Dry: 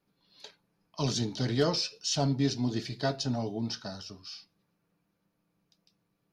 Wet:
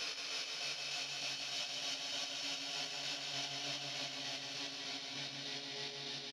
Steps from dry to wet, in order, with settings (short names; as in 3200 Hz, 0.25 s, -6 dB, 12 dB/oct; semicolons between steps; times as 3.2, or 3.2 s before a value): one diode to ground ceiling -31 dBFS; band-pass sweep 1600 Hz -> 4600 Hz, 0.93–3.64; Paulstretch 11×, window 1.00 s, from 1.94; chopper 3.3 Hz, depth 60%, duty 40%; chorus 0.44 Hz, delay 17.5 ms, depth 3.8 ms; on a send: feedback echo 0.174 s, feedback 56%, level -3.5 dB; on the sum: gain +9 dB